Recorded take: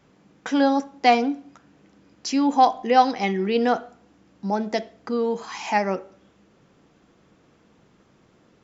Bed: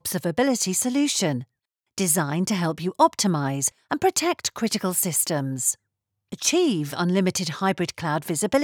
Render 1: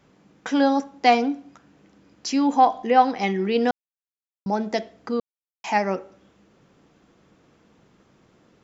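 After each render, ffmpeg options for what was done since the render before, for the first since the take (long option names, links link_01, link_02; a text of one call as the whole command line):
ffmpeg -i in.wav -filter_complex "[0:a]asettb=1/sr,asplit=3[link_01][link_02][link_03];[link_01]atrim=end=2.564[link_04];[link_02]atrim=start=2.56:end=3.19,asetpts=PTS-STARTPTS,afade=type=in:duration=0.004:curve=qsin,afade=type=out:start_time=0.626:duration=0.004:curve=qsin,acrossover=split=3200[link_05][link_06];[link_06]acompressor=threshold=-48dB:ratio=4:attack=1:release=60[link_07];[link_05][link_07]amix=inputs=2:normalize=0[link_08];[link_03]atrim=start=3.186[link_09];[link_04][link_08]acrossfade=duration=0.004:curve1=hsin:curve2=qsin[link_10];[link_10][link_09]acrossfade=duration=0.004:curve1=qsin:curve2=hsin,asplit=5[link_11][link_12][link_13][link_14][link_15];[link_11]atrim=end=3.71,asetpts=PTS-STARTPTS,afade=type=out:start_time=3.706:duration=0.004:curve=hsin[link_16];[link_12]atrim=start=3.71:end=4.46,asetpts=PTS-STARTPTS,volume=0[link_17];[link_13]atrim=start=4.46:end=5.2,asetpts=PTS-STARTPTS,afade=type=in:duration=0.004:curve=hsin,afade=type=out:start_time=0.736:duration=0.004:curve=hsin[link_18];[link_14]atrim=start=5.2:end=5.64,asetpts=PTS-STARTPTS,volume=0[link_19];[link_15]atrim=start=5.64,asetpts=PTS-STARTPTS,afade=type=in:duration=0.004:curve=hsin[link_20];[link_16][link_17][link_18][link_19][link_20]concat=n=5:v=0:a=1" out.wav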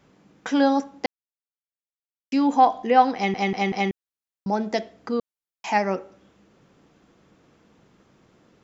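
ffmpeg -i in.wav -filter_complex "[0:a]asplit=7[link_01][link_02][link_03][link_04][link_05][link_06][link_07];[link_01]atrim=end=1.06,asetpts=PTS-STARTPTS,afade=type=out:start_time=1.056:duration=0.004:curve=hsin[link_08];[link_02]atrim=start=1.06:end=2.32,asetpts=PTS-STARTPTS,volume=0[link_09];[link_03]atrim=start=2.32:end=3.342,asetpts=PTS-STARTPTS,afade=type=in:duration=0.004:curve=hsin[link_10];[link_04]atrim=start=3.148:end=3.342[link_11];[link_05]atrim=start=3.148:end=3.342[link_12];[link_06]atrim=start=3.148:end=3.342[link_13];[link_07]atrim=start=3.908[link_14];[link_08][link_09][link_10]concat=n=3:v=0:a=1[link_15];[link_15][link_11]acrossfade=duration=0.004:curve1=hsin:curve2=hsin[link_16];[link_16][link_12]acrossfade=duration=0.004:curve1=hsin:curve2=hsin[link_17];[link_17][link_13]acrossfade=duration=0.004:curve1=hsin:curve2=hsin[link_18];[link_18][link_14]acrossfade=duration=0.004:curve1=hsin:curve2=hsin" out.wav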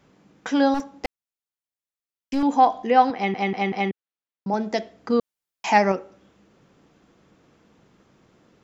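ffmpeg -i in.wav -filter_complex "[0:a]asettb=1/sr,asplit=3[link_01][link_02][link_03];[link_01]atrim=end=0.744[link_04];[link_02]atrim=start=0.74:end=2.43,asetpts=PTS-STARTPTS,afade=type=in:duration=0.004:curve=qsin,afade=type=out:start_time=1.686:duration=0.004:curve=qsin,aeval=exprs='clip(val(0),-1,0.0631)':channel_layout=same[link_05];[link_03]atrim=start=2.426[link_06];[link_04][link_05]acrossfade=duration=0.004:curve1=hsin:curve2=qsin[link_07];[link_07][link_06]acrossfade=duration=0.004:curve1=qsin:curve2=hsin,asettb=1/sr,asplit=3[link_08][link_09][link_10];[link_08]atrim=end=3.104[link_11];[link_09]atrim=start=3.1:end=4.54,asetpts=PTS-STARTPTS,afade=type=in:duration=0.004:curve=qsin,afade=type=out:start_time=1.436:duration=0.004:curve=qsin,highpass=130,lowpass=3600[link_12];[link_10]atrim=start=4.536[link_13];[link_11][link_12]acrossfade=duration=0.004:curve1=hsin:curve2=qsin[link_14];[link_14][link_13]acrossfade=duration=0.004:curve1=qsin:curve2=hsin,asettb=1/sr,asplit=3[link_15][link_16][link_17];[link_15]atrim=end=5.104[link_18];[link_16]atrim=start=5.1:end=5.92,asetpts=PTS-STARTPTS,afade=type=in:duration=0.004:curve=qsin,afade=type=out:start_time=0.816:duration=0.004:curve=qsin,acontrast=22[link_19];[link_17]atrim=start=5.916[link_20];[link_18][link_19]acrossfade=duration=0.004:curve1=hsin:curve2=qsin[link_21];[link_21][link_20]acrossfade=duration=0.004:curve1=qsin:curve2=hsin" out.wav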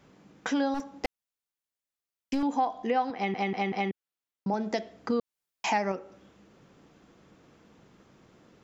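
ffmpeg -i in.wav -af "acompressor=threshold=-27dB:ratio=3" out.wav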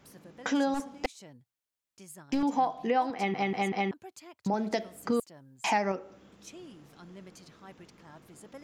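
ffmpeg -i in.wav -i bed.wav -filter_complex "[1:a]volume=-27.5dB[link_01];[0:a][link_01]amix=inputs=2:normalize=0" out.wav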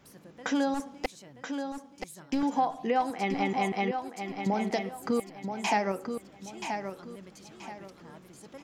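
ffmpeg -i in.wav -af "aecho=1:1:979|1958|2937|3916:0.447|0.138|0.0429|0.0133" out.wav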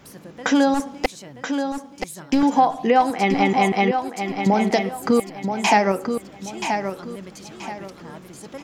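ffmpeg -i in.wav -af "volume=10.5dB" out.wav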